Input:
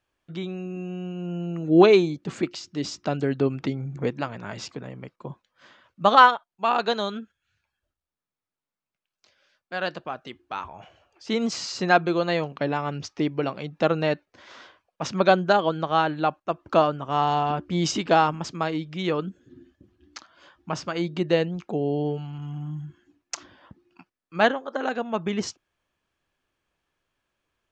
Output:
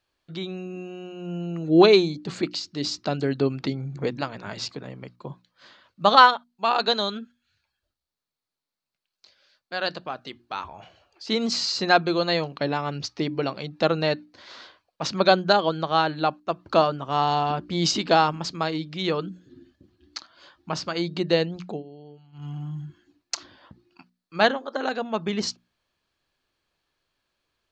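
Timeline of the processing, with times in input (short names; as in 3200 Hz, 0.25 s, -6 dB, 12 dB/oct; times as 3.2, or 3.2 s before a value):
21.69–22.46 dip -19 dB, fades 0.14 s
whole clip: bell 4300 Hz +11 dB 0.45 oct; notches 60/120/180/240/300 Hz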